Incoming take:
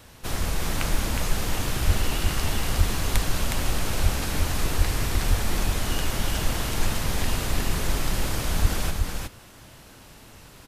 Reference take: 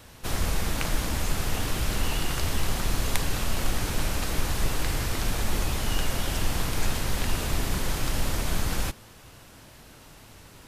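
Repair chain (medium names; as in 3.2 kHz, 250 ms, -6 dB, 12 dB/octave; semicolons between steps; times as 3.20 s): de-plosive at 1.86/2.77/4.02/4.77/5.29/8.61 s; inverse comb 364 ms -3.5 dB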